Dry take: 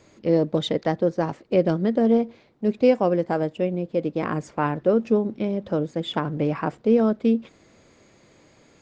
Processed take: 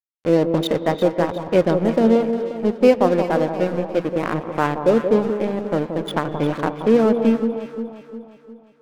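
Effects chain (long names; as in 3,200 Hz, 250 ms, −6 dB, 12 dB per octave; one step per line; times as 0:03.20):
adaptive Wiener filter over 9 samples
low-shelf EQ 330 Hz −3.5 dB
dead-zone distortion −34.5 dBFS
delay that swaps between a low-pass and a high-pass 177 ms, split 1,100 Hz, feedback 68%, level −7.5 dB
on a send at −14 dB: convolution reverb, pre-delay 3 ms
on the sum: level +6 dB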